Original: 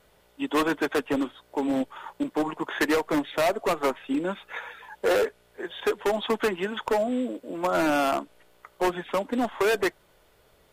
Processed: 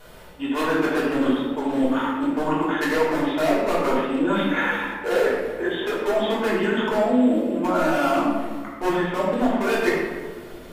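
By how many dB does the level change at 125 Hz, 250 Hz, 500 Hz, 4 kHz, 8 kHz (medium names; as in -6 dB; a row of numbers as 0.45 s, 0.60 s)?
+8.5 dB, +7.0 dB, +4.0 dB, +3.0 dB, 0.0 dB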